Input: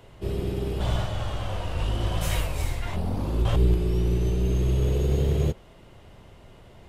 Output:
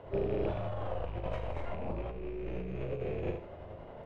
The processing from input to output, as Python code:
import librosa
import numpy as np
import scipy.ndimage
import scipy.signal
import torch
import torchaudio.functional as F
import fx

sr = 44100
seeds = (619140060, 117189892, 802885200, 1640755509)

y = fx.rattle_buzz(x, sr, strikes_db=-22.0, level_db=-23.0)
y = scipy.signal.sosfilt(scipy.signal.butter(2, 1900.0, 'lowpass', fs=sr, output='sos'), y)
y = fx.low_shelf(y, sr, hz=120.0, db=-4.5)
y = fx.room_flutter(y, sr, wall_m=6.5, rt60_s=0.71)
y = fx.stretch_grains(y, sr, factor=0.59, grain_ms=186.0)
y = fx.over_compress(y, sr, threshold_db=-31.0, ratio=-1.0)
y = fx.peak_eq(y, sr, hz=580.0, db=9.5, octaves=0.98)
y = y * 10.0 ** (-6.5 / 20.0)